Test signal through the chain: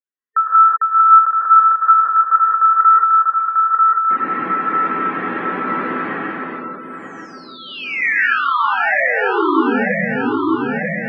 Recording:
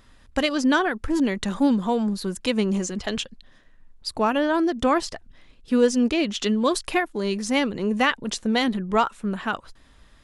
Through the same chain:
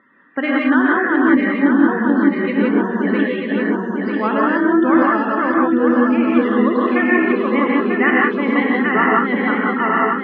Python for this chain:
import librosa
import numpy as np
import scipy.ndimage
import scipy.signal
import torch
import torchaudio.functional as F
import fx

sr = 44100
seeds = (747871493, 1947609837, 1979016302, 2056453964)

p1 = fx.reverse_delay_fb(x, sr, ms=471, feedback_pct=74, wet_db=-2.5)
p2 = fx.spec_topn(p1, sr, count=64)
p3 = fx.rider(p2, sr, range_db=5, speed_s=0.5)
p4 = p2 + (p3 * librosa.db_to_amplitude(-0.5))
p5 = fx.cabinet(p4, sr, low_hz=200.0, low_slope=24, high_hz=2300.0, hz=(290.0, 690.0, 1300.0, 1900.0), db=(3, -6, 4, 8))
p6 = fx.rev_gated(p5, sr, seeds[0], gate_ms=200, shape='rising', drr_db=-3.0)
y = p6 * librosa.db_to_amplitude(-6.5)